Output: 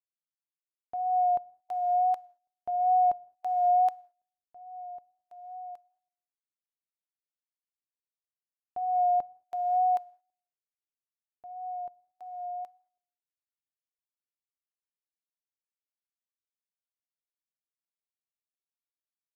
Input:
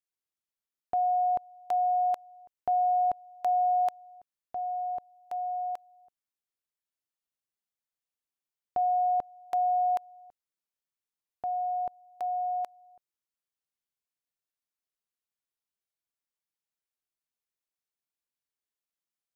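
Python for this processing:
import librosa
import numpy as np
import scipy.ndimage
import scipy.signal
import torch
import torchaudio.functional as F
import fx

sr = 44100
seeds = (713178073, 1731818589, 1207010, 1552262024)

y = fx.rev_gated(x, sr, seeds[0], gate_ms=250, shape='flat', drr_db=10.0)
y = fx.wow_flutter(y, sr, seeds[1], rate_hz=2.1, depth_cents=26.0)
y = fx.upward_expand(y, sr, threshold_db=-43.0, expansion=2.5)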